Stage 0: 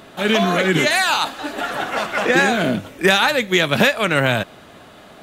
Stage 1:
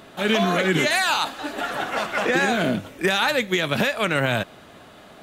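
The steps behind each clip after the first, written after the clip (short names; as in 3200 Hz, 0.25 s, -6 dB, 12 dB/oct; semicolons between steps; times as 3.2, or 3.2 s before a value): limiter -7 dBFS, peak gain reduction 5.5 dB; gain -3 dB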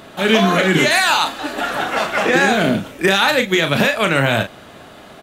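doubler 36 ms -7.5 dB; gain +5.5 dB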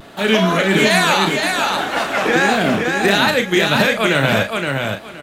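wow and flutter 74 cents; feedback echo 0.52 s, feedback 20%, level -4 dB; gain -1 dB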